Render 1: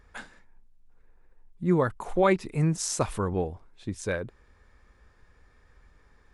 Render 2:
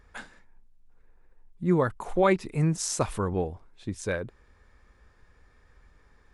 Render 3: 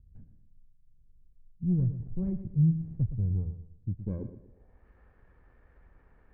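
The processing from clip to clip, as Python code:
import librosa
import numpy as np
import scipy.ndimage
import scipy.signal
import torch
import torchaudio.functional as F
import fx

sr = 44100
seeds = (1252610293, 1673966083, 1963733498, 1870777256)

y1 = x
y2 = fx.lower_of_two(y1, sr, delay_ms=0.46)
y2 = fx.filter_sweep_lowpass(y2, sr, from_hz=130.0, to_hz=1200.0, start_s=3.87, end_s=4.88, q=1.6)
y2 = fx.echo_feedback(y2, sr, ms=117, feedback_pct=34, wet_db=-11.0)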